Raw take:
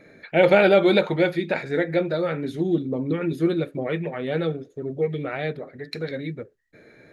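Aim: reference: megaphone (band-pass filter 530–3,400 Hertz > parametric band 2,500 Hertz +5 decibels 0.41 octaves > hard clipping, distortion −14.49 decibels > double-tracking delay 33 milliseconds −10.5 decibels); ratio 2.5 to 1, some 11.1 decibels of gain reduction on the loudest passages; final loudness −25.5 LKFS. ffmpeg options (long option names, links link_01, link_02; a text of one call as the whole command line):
ffmpeg -i in.wav -filter_complex "[0:a]acompressor=threshold=-29dB:ratio=2.5,highpass=530,lowpass=3400,equalizer=frequency=2500:width_type=o:width=0.41:gain=5,asoftclip=type=hard:threshold=-26dB,asplit=2[link_01][link_02];[link_02]adelay=33,volume=-10.5dB[link_03];[link_01][link_03]amix=inputs=2:normalize=0,volume=10dB" out.wav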